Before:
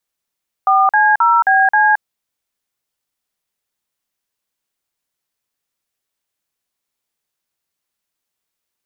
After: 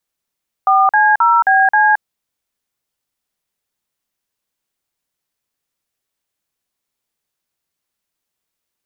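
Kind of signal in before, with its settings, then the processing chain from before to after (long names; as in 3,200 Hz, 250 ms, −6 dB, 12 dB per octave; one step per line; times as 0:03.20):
touch tones "4C0BC", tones 221 ms, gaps 45 ms, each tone −11.5 dBFS
low-shelf EQ 460 Hz +3 dB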